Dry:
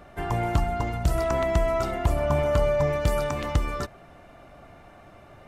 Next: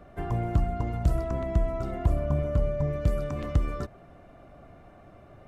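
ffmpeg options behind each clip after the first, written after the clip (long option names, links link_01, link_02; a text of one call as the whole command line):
ffmpeg -i in.wav -filter_complex "[0:a]tiltshelf=frequency=1200:gain=5,bandreject=frequency=880:width=12,acrossover=split=330[link_01][link_02];[link_02]acompressor=threshold=-30dB:ratio=3[link_03];[link_01][link_03]amix=inputs=2:normalize=0,volume=-5dB" out.wav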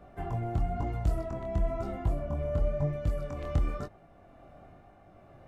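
ffmpeg -i in.wav -af "equalizer=frequency=790:width_type=o:width=0.24:gain=6,flanger=delay=19:depth=6.6:speed=1,tremolo=f=1.1:d=0.31" out.wav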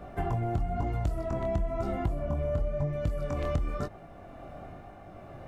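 ffmpeg -i in.wav -af "acompressor=threshold=-35dB:ratio=6,volume=8.5dB" out.wav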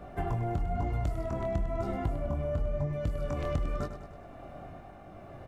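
ffmpeg -i in.wav -af "aecho=1:1:101|202|303|404|505|606:0.282|0.158|0.0884|0.0495|0.0277|0.0155,volume=-1.5dB" out.wav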